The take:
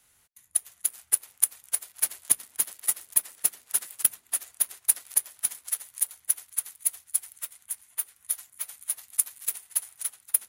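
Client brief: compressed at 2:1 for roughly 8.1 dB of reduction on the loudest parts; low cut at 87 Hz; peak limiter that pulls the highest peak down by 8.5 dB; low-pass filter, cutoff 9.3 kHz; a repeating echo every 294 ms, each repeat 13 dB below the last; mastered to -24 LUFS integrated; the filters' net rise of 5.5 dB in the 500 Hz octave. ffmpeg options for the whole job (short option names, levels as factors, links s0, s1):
-af "highpass=87,lowpass=9300,equalizer=f=500:t=o:g=7,acompressor=threshold=0.0178:ratio=2,alimiter=limit=0.075:level=0:latency=1,aecho=1:1:294|588|882:0.224|0.0493|0.0108,volume=6.31"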